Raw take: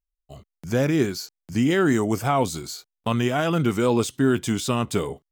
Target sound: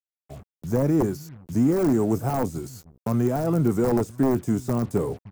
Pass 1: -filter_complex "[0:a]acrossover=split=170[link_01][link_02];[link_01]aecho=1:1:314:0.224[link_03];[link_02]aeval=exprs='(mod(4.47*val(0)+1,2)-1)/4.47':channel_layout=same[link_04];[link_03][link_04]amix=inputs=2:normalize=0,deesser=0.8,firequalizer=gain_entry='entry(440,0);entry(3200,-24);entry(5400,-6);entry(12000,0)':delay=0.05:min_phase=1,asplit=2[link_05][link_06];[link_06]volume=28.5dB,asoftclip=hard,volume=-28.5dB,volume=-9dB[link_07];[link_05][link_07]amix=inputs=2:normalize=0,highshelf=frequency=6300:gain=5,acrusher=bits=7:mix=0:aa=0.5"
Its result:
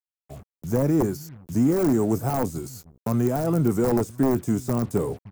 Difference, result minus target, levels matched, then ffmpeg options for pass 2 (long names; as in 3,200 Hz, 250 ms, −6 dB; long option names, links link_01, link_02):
8,000 Hz band +3.0 dB
-filter_complex "[0:a]acrossover=split=170[link_01][link_02];[link_01]aecho=1:1:314:0.224[link_03];[link_02]aeval=exprs='(mod(4.47*val(0)+1,2)-1)/4.47':channel_layout=same[link_04];[link_03][link_04]amix=inputs=2:normalize=0,deesser=0.8,firequalizer=gain_entry='entry(440,0);entry(3200,-24);entry(5400,-6);entry(12000,0)':delay=0.05:min_phase=1,asplit=2[link_05][link_06];[link_06]volume=28.5dB,asoftclip=hard,volume=-28.5dB,volume=-9dB[link_07];[link_05][link_07]amix=inputs=2:normalize=0,acrusher=bits=7:mix=0:aa=0.5"